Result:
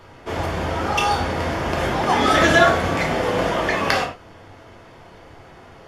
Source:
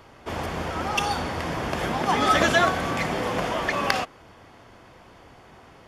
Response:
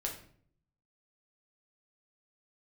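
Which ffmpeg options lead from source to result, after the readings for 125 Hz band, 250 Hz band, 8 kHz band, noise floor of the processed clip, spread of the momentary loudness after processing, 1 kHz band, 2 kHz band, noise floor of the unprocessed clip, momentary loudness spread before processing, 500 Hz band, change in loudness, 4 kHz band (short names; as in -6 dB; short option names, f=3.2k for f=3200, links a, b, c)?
+6.0 dB, +5.0 dB, +3.0 dB, -45 dBFS, 10 LU, +4.0 dB, +5.0 dB, -51 dBFS, 11 LU, +6.5 dB, +5.0 dB, +4.0 dB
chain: -filter_complex "[0:a]highshelf=f=10k:g=-4[a];[1:a]atrim=start_sample=2205,afade=t=out:st=0.17:d=0.01,atrim=end_sample=7938[b];[a][b]afir=irnorm=-1:irlink=0,volume=3.5dB"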